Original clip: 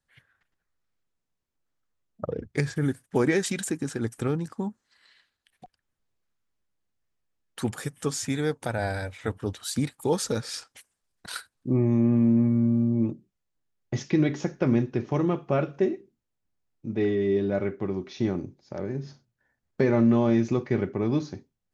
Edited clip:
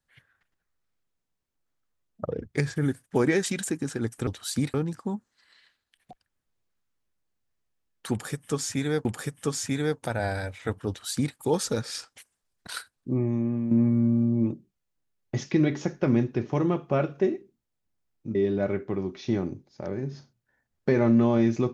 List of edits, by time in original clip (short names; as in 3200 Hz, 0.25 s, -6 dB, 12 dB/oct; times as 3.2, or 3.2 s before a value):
7.64–8.58 loop, 2 plays
9.47–9.94 copy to 4.27
11.34–12.3 fade out, to -9 dB
16.94–17.27 cut